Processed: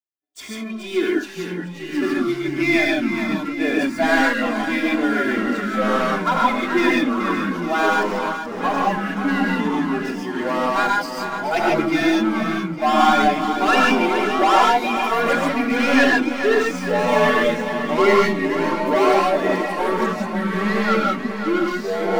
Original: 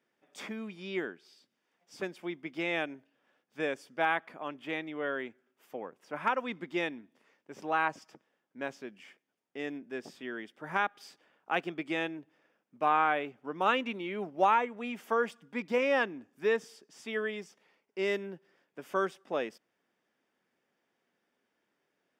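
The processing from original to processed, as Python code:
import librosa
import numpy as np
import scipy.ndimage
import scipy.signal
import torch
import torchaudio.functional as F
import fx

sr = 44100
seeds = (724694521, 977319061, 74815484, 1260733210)

y = fx.bin_expand(x, sr, power=1.5)
y = fx.transient(y, sr, attack_db=-2, sustain_db=3)
y = fx.leveller(y, sr, passes=3)
y = y + 0.99 * np.pad(y, (int(2.9 * sr / 1000.0), 0))[:len(y)]
y = fx.echo_feedback(y, sr, ms=427, feedback_pct=55, wet_db=-9)
y = fx.rev_gated(y, sr, seeds[0], gate_ms=170, shape='rising', drr_db=-2.0)
y = fx.echo_pitch(y, sr, ms=746, semitones=-4, count=2, db_per_echo=-3.0)
y = y * 10.0 ** (1.0 / 20.0)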